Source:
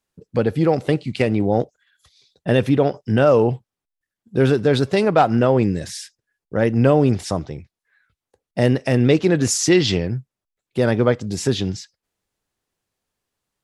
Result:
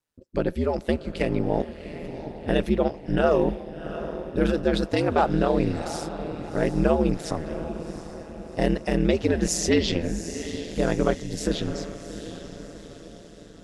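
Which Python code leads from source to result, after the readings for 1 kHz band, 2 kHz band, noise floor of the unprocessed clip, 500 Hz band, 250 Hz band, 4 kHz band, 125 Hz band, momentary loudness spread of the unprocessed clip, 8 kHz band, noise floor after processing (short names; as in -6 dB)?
-5.0 dB, -5.5 dB, under -85 dBFS, -6.0 dB, -5.0 dB, -5.5 dB, -9.0 dB, 14 LU, -6.0 dB, -46 dBFS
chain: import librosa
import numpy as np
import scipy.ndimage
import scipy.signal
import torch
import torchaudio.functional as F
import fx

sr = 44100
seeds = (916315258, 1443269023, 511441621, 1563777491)

y = fx.echo_diffused(x, sr, ms=737, feedback_pct=50, wet_db=-11)
y = y * np.sin(2.0 * np.pi * 80.0 * np.arange(len(y)) / sr)
y = y * librosa.db_to_amplitude(-3.0)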